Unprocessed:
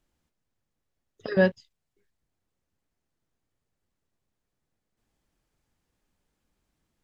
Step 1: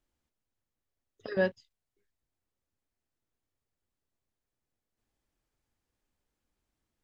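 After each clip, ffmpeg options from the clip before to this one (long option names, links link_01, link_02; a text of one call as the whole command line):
ffmpeg -i in.wav -af "equalizer=frequency=170:width=4.3:gain=-7.5,volume=-6dB" out.wav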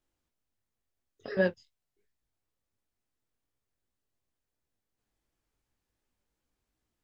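ffmpeg -i in.wav -af "flanger=delay=15.5:depth=7.4:speed=2.8,volume=3dB" out.wav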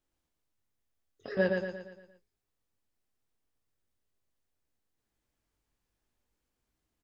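ffmpeg -i in.wav -af "aecho=1:1:116|232|348|464|580|696:0.631|0.303|0.145|0.0698|0.0335|0.0161,volume=-1.5dB" out.wav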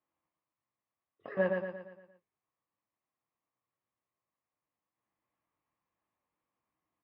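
ffmpeg -i in.wav -af "highpass=170,equalizer=frequency=240:width_type=q:width=4:gain=-7,equalizer=frequency=410:width_type=q:width=4:gain=-8,equalizer=frequency=1100:width_type=q:width=4:gain=9,equalizer=frequency=1500:width_type=q:width=4:gain=-7,lowpass=frequency=2400:width=0.5412,lowpass=frequency=2400:width=1.3066" out.wav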